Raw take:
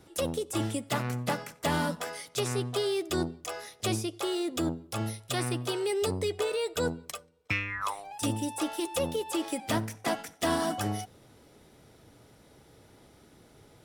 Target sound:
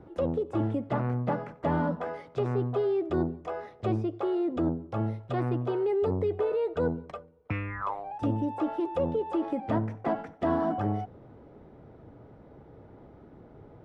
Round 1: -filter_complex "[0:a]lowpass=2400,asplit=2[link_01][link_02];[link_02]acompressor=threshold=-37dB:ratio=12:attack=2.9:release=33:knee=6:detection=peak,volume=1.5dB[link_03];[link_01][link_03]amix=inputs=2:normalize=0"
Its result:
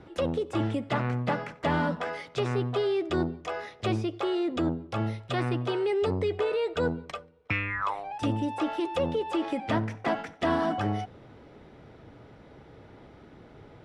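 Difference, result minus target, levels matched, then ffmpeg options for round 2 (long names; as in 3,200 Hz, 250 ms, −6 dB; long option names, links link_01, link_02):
2,000 Hz band +8.0 dB
-filter_complex "[0:a]lowpass=1000,asplit=2[link_01][link_02];[link_02]acompressor=threshold=-37dB:ratio=12:attack=2.9:release=33:knee=6:detection=peak,volume=1.5dB[link_03];[link_01][link_03]amix=inputs=2:normalize=0"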